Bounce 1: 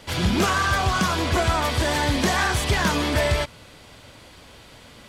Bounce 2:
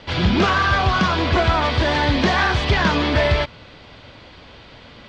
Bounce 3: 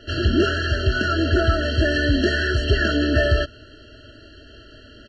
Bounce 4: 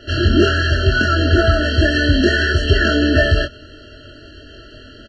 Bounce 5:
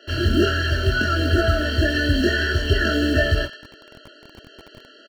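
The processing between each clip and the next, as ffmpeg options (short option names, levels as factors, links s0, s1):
-af "lowpass=f=4600:w=0.5412,lowpass=f=4600:w=1.3066,volume=1.58"
-af "aecho=1:1:2.9:1,afftfilt=real='re*eq(mod(floor(b*sr/1024/660),2),0)':imag='im*eq(mod(floor(b*sr/1024/660),2),0)':win_size=1024:overlap=0.75,volume=0.708"
-filter_complex "[0:a]asplit=2[s0][s1];[s1]adelay=23,volume=0.596[s2];[s0][s2]amix=inputs=2:normalize=0,volume=1.58"
-filter_complex "[0:a]acrossover=split=310|1300[s0][s1][s2];[s0]acrusher=bits=5:mix=0:aa=0.000001[s3];[s2]aecho=1:1:109|218|327|436|545:0.251|0.116|0.0532|0.0244|0.0112[s4];[s3][s1][s4]amix=inputs=3:normalize=0,volume=0.562"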